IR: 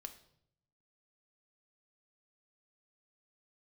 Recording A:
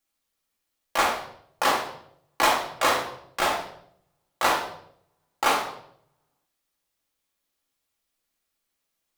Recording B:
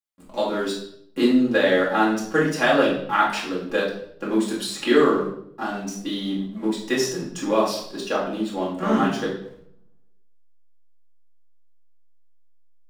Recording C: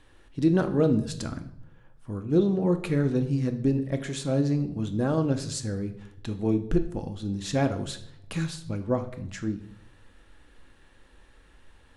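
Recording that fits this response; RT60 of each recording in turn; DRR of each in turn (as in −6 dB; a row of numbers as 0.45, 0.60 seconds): C; 0.70, 0.70, 0.70 seconds; −2.5, −6.5, 7.0 decibels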